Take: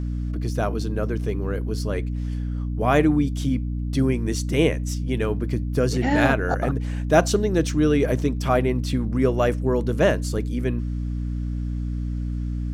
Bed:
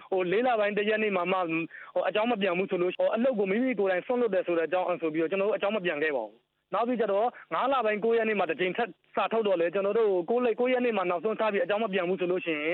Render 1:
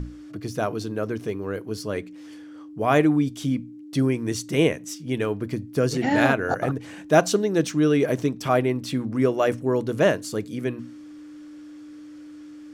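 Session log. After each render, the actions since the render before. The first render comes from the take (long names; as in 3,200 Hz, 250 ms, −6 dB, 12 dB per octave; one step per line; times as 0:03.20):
mains-hum notches 60/120/180/240 Hz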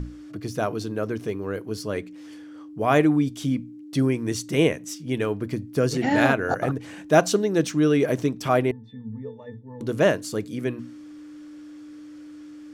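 0:08.71–0:09.81: resonances in every octave A, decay 0.24 s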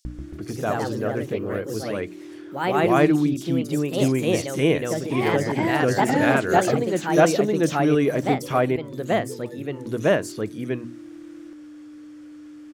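multiband delay without the direct sound highs, lows 50 ms, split 4,600 Hz
delay with pitch and tempo change per echo 143 ms, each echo +2 semitones, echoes 2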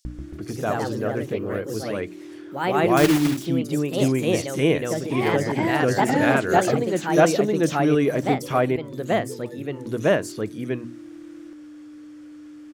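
0:02.97–0:03.48: one scale factor per block 3 bits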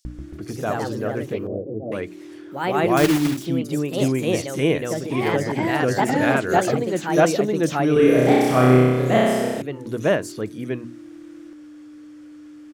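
0:01.47–0:01.92: elliptic low-pass filter 690 Hz, stop band 70 dB
0:07.93–0:09.62: flutter between parallel walls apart 5.4 metres, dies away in 1.5 s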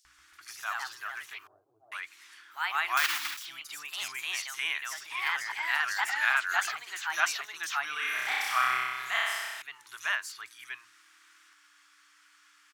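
dynamic equaliser 8,900 Hz, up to −6 dB, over −47 dBFS, Q 0.86
inverse Chebyshev high-pass filter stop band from 560 Hz, stop band 40 dB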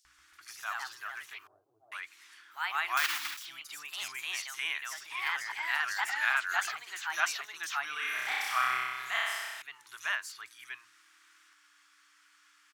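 level −2.5 dB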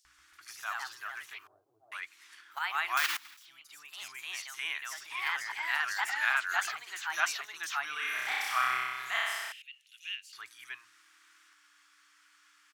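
0:02.01–0:02.59: transient designer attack +9 dB, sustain −2 dB
0:03.17–0:05.05: fade in, from −17 dB
0:09.52–0:10.33: four-pole ladder high-pass 2,600 Hz, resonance 75%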